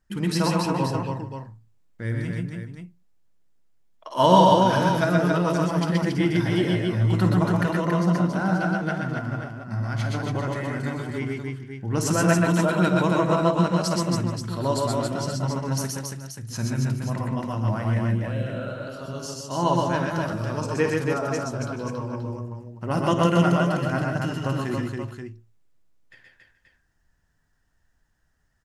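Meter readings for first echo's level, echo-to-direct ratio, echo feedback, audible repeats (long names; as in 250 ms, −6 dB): −12.0 dB, 1.5 dB, repeats not evenly spaced, 5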